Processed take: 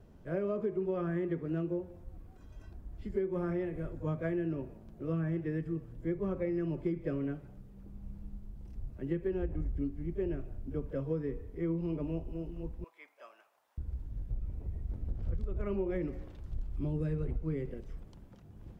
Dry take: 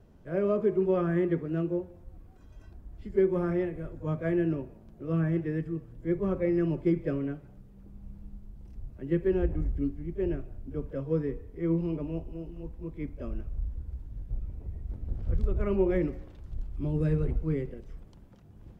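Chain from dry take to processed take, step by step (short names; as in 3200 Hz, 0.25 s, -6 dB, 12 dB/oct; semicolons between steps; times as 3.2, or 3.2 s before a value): 12.84–13.78 Chebyshev high-pass 810 Hz, order 3; compressor 6:1, threshold -30 dBFS, peak gain reduction 10.5 dB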